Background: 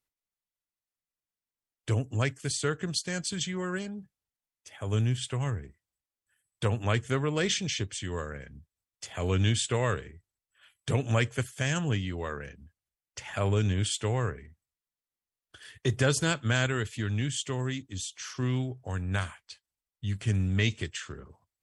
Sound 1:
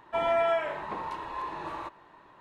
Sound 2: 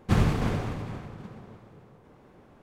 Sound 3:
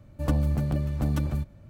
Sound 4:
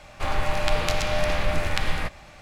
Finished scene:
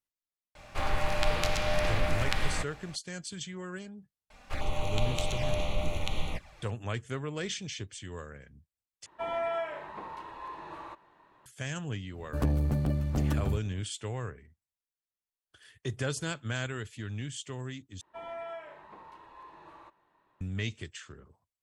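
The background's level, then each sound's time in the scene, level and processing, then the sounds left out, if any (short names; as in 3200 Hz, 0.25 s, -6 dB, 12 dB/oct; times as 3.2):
background -7.5 dB
0.55 add 4 -4.5 dB
4.3 add 4 -5.5 dB + envelope flanger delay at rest 4.9 ms, full sweep at -19.5 dBFS
9.06 replace with 1 -6.5 dB
12.14 add 3 -1 dB + core saturation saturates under 190 Hz
18.01 replace with 1 -15 dB
not used: 2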